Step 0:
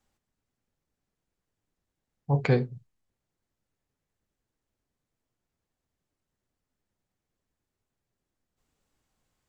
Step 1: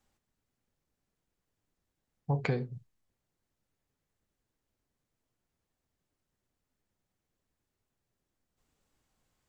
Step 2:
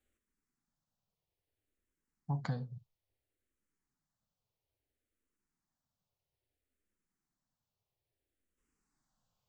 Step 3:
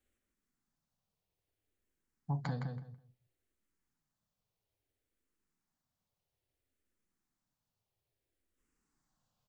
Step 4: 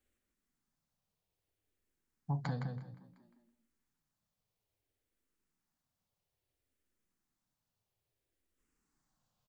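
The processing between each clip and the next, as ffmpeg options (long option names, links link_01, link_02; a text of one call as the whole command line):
ffmpeg -i in.wav -af "acompressor=threshold=-26dB:ratio=10" out.wav
ffmpeg -i in.wav -filter_complex "[0:a]asplit=2[link_01][link_02];[link_02]afreqshift=-0.6[link_03];[link_01][link_03]amix=inputs=2:normalize=1,volume=-3.5dB" out.wav
ffmpeg -i in.wav -filter_complex "[0:a]asplit=2[link_01][link_02];[link_02]adelay=164,lowpass=frequency=3900:poles=1,volume=-5dB,asplit=2[link_03][link_04];[link_04]adelay=164,lowpass=frequency=3900:poles=1,volume=0.2,asplit=2[link_05][link_06];[link_06]adelay=164,lowpass=frequency=3900:poles=1,volume=0.2[link_07];[link_01][link_03][link_05][link_07]amix=inputs=4:normalize=0" out.wav
ffmpeg -i in.wav -filter_complex "[0:a]asplit=3[link_01][link_02][link_03];[link_02]adelay=354,afreqshift=53,volume=-22.5dB[link_04];[link_03]adelay=708,afreqshift=106,volume=-31.4dB[link_05];[link_01][link_04][link_05]amix=inputs=3:normalize=0" out.wav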